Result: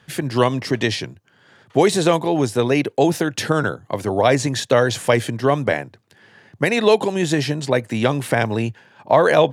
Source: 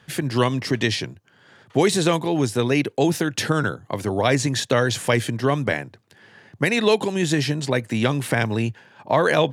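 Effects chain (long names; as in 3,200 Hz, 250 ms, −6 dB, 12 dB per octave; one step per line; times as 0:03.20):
dynamic equaliser 650 Hz, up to +6 dB, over −31 dBFS, Q 0.9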